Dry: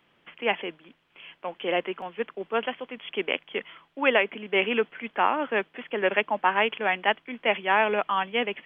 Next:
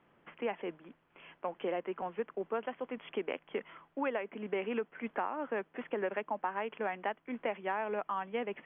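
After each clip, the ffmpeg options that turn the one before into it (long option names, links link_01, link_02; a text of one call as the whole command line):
ffmpeg -i in.wav -af "lowpass=1500,acompressor=threshold=-32dB:ratio=6" out.wav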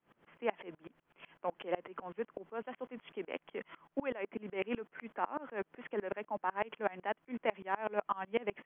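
ffmpeg -i in.wav -af "aeval=exprs='val(0)*pow(10,-27*if(lt(mod(-8*n/s,1),2*abs(-8)/1000),1-mod(-8*n/s,1)/(2*abs(-8)/1000),(mod(-8*n/s,1)-2*abs(-8)/1000)/(1-2*abs(-8)/1000))/20)':channel_layout=same,volume=6.5dB" out.wav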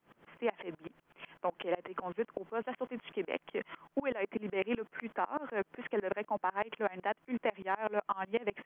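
ffmpeg -i in.wav -af "acompressor=threshold=-34dB:ratio=6,volume=5.5dB" out.wav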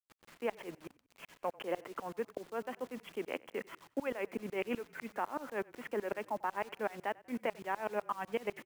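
ffmpeg -i in.wav -filter_complex "[0:a]acrusher=bits=8:mix=0:aa=0.000001,asplit=4[link_01][link_02][link_03][link_04];[link_02]adelay=94,afreqshift=-32,volume=-23dB[link_05];[link_03]adelay=188,afreqshift=-64,volume=-30.1dB[link_06];[link_04]adelay=282,afreqshift=-96,volume=-37.3dB[link_07];[link_01][link_05][link_06][link_07]amix=inputs=4:normalize=0,volume=-2.5dB" out.wav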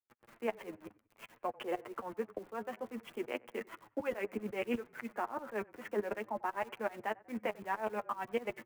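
ffmpeg -i in.wav -filter_complex "[0:a]flanger=delay=8.2:depth=1.5:regen=19:speed=0.6:shape=sinusoidal,acrossover=split=120|2400[link_01][link_02][link_03];[link_03]aeval=exprs='val(0)*gte(abs(val(0)),0.00119)':channel_layout=same[link_04];[link_01][link_02][link_04]amix=inputs=3:normalize=0,volume=3.5dB" out.wav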